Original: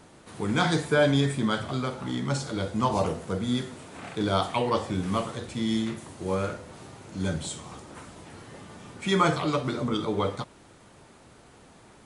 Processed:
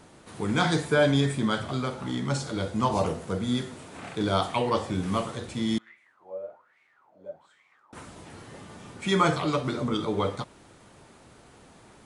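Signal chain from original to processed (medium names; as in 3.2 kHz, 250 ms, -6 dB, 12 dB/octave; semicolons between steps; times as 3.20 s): 5.78–7.93 s: wah-wah 1.2 Hz 550–2200 Hz, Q 11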